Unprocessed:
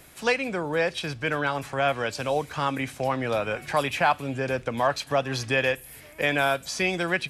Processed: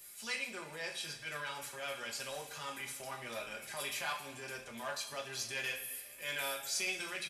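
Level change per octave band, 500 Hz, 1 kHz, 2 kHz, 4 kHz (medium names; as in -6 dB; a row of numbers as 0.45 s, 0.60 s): -19.5 dB, -18.0 dB, -12.5 dB, -7.5 dB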